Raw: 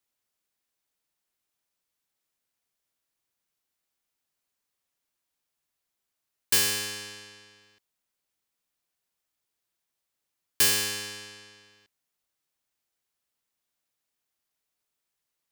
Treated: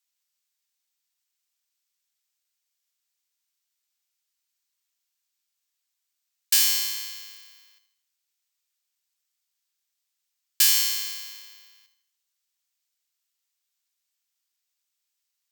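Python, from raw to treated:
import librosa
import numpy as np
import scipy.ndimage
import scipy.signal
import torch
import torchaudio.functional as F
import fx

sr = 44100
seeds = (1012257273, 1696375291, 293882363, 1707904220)

p1 = fx.weighting(x, sr, curve='ITU-R 468')
p2 = p1 + fx.echo_feedback(p1, sr, ms=78, feedback_pct=46, wet_db=-10.5, dry=0)
p3 = (np.kron(scipy.signal.resample_poly(p2, 1, 2), np.eye(2)[0]) * 2)[:len(p2)]
y = p3 * librosa.db_to_amplitude(-7.5)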